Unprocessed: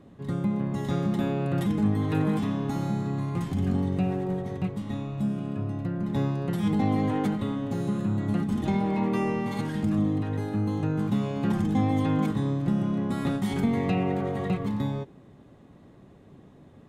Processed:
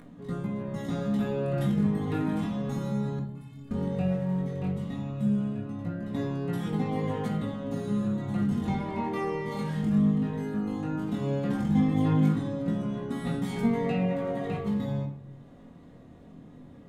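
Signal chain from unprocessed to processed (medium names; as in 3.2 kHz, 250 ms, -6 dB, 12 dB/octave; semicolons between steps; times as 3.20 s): upward compressor, threshold -42 dBFS; chorus 0.15 Hz, delay 17 ms, depth 7 ms; 3.19–3.71 s: inharmonic resonator 130 Hz, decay 0.5 s, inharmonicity 0.03; simulated room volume 670 m³, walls furnished, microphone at 1.8 m; trim -2 dB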